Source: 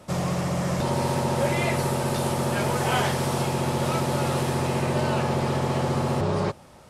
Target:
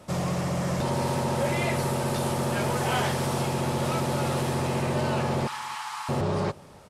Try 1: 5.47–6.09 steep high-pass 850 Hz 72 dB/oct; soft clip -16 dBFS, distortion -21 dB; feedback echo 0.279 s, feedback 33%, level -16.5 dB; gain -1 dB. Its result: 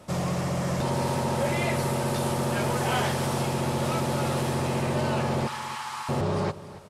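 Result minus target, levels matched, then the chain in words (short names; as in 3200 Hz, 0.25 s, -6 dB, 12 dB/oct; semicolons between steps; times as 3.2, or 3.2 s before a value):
echo-to-direct +10.5 dB
5.47–6.09 steep high-pass 850 Hz 72 dB/oct; soft clip -16 dBFS, distortion -21 dB; feedback echo 0.279 s, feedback 33%, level -27 dB; gain -1 dB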